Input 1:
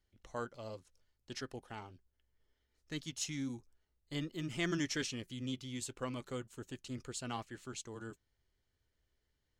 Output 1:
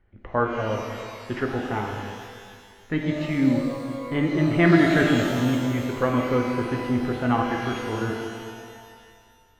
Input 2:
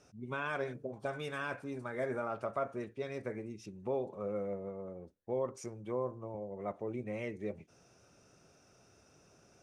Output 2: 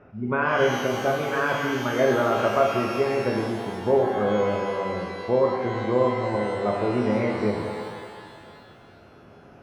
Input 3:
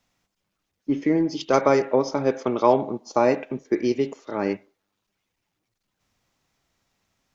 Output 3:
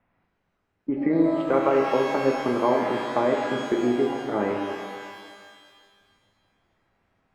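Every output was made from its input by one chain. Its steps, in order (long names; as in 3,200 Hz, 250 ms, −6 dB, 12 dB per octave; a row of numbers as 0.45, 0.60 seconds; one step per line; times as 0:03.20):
low-pass filter 2,100 Hz 24 dB per octave
downward compressor 2 to 1, threshold −28 dBFS
reverb with rising layers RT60 2 s, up +12 semitones, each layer −8 dB, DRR 1 dB
loudness normalisation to −24 LKFS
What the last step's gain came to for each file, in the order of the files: +17.0, +13.0, +2.5 decibels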